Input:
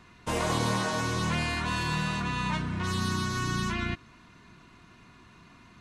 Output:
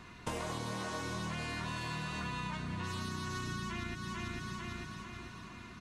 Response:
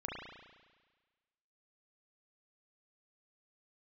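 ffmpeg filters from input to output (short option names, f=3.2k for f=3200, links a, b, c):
-filter_complex "[0:a]asplit=2[a][b];[b]aecho=0:1:446|892|1338|1784|2230|2676:0.355|0.177|0.0887|0.0444|0.0222|0.0111[c];[a][c]amix=inputs=2:normalize=0,acompressor=threshold=-38dB:ratio=12,volume=2.5dB"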